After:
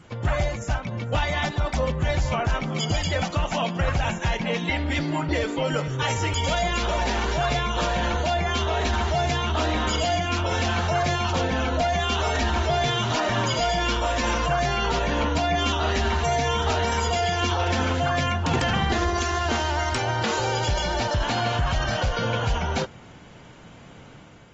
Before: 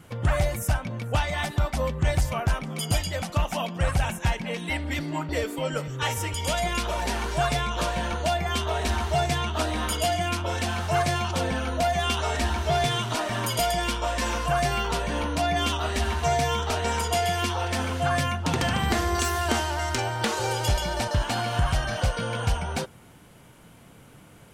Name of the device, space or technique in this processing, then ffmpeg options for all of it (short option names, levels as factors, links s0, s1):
low-bitrate web radio: -af "dynaudnorm=f=860:g=3:m=1.78,alimiter=limit=0.15:level=0:latency=1:release=22" -ar 48000 -c:a aac -b:a 24k